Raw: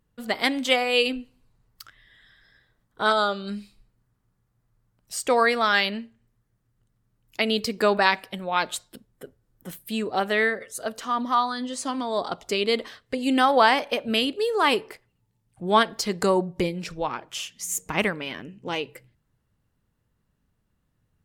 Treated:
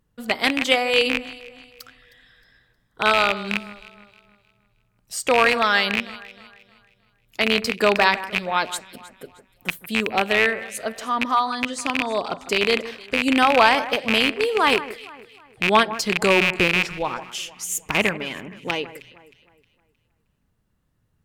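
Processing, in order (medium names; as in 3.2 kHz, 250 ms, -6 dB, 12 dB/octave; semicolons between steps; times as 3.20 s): rattle on loud lows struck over -35 dBFS, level -9 dBFS; echo whose repeats swap between lows and highs 156 ms, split 2.2 kHz, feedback 59%, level -14 dB; trim +2 dB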